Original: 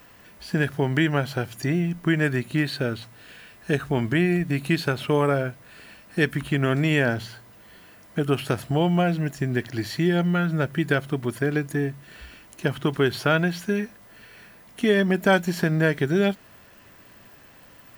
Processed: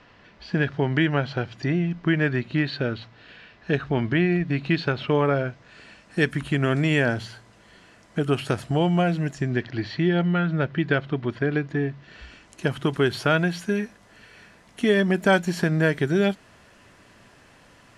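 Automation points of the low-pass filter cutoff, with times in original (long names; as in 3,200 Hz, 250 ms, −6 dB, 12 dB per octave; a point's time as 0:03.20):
low-pass filter 24 dB per octave
0:05.27 4,800 Hz
0:06.22 9,900 Hz
0:09.28 9,900 Hz
0:09.72 4,300 Hz
0:11.86 4,300 Hz
0:12.67 11,000 Hz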